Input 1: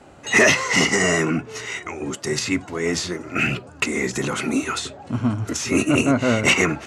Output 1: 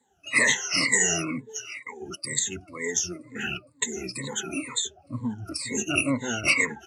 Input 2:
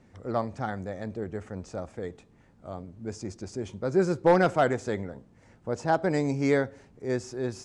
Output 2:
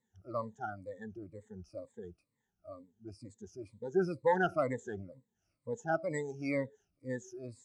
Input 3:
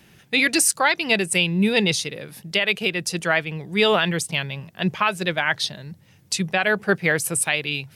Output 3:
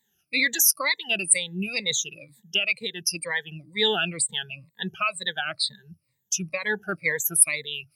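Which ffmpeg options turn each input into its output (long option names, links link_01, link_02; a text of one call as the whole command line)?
ffmpeg -i in.wav -af "afftfilt=real='re*pow(10,21/40*sin(2*PI*(1*log(max(b,1)*sr/1024/100)/log(2)-(-2.1)*(pts-256)/sr)))':imag='im*pow(10,21/40*sin(2*PI*(1*log(max(b,1)*sr/1024/100)/log(2)-(-2.1)*(pts-256)/sr)))':win_size=1024:overlap=0.75,afftdn=noise_reduction=16:noise_floor=-27,crystalizer=i=4:c=0,volume=-15dB" out.wav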